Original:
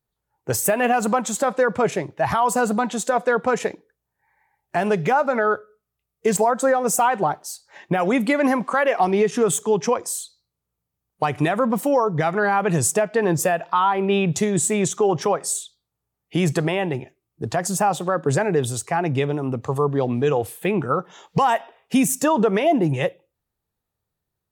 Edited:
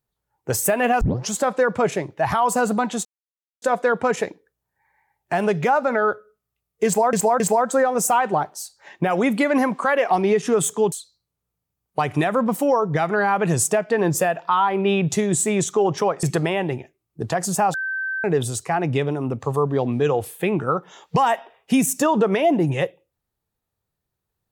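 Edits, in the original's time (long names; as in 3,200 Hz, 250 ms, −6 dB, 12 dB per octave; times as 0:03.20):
0:01.01: tape start 0.31 s
0:03.05: splice in silence 0.57 s
0:06.29–0:06.56: repeat, 3 plays
0:09.81–0:10.16: remove
0:15.47–0:16.45: remove
0:17.96–0:18.46: beep over 1,550 Hz −23 dBFS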